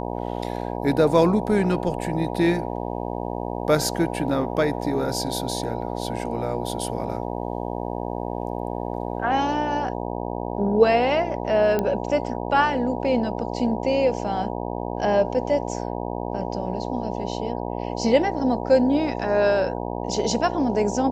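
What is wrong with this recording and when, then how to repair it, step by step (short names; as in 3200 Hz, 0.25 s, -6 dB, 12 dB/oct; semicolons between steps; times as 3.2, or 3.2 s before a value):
buzz 60 Hz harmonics 16 -29 dBFS
11.79 pop -11 dBFS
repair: de-click; de-hum 60 Hz, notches 16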